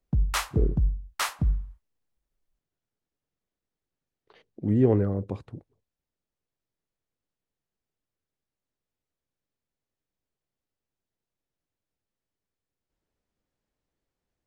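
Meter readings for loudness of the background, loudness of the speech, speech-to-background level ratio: −28.5 LKFS, −27.0 LKFS, 1.5 dB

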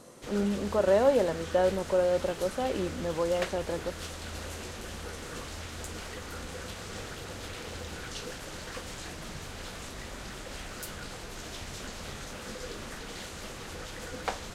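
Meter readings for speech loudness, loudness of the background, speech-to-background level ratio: −28.5 LKFS, −40.0 LKFS, 11.5 dB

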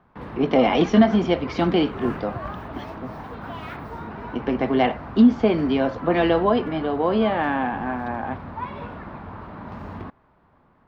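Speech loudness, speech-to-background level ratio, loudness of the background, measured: −21.5 LKFS, 14.0 dB, −35.5 LKFS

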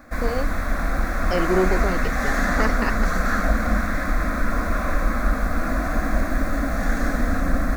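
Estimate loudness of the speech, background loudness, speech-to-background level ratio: −27.0 LKFS, −24.5 LKFS, −2.5 dB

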